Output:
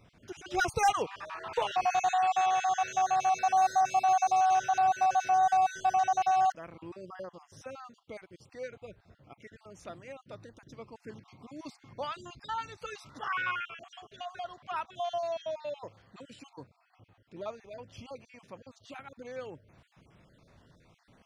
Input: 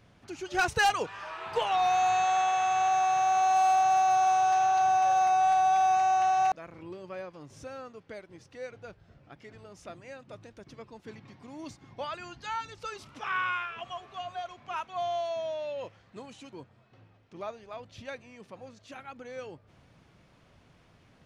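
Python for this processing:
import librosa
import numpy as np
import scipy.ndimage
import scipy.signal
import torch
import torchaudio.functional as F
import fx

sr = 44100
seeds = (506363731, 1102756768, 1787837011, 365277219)

y = fx.spec_dropout(x, sr, seeds[0], share_pct=36)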